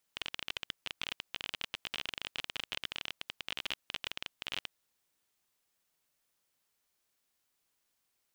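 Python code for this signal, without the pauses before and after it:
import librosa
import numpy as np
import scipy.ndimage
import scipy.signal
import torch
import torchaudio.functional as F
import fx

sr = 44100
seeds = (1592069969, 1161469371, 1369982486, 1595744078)

y = fx.geiger_clicks(sr, seeds[0], length_s=4.66, per_s=26.0, level_db=-19.0)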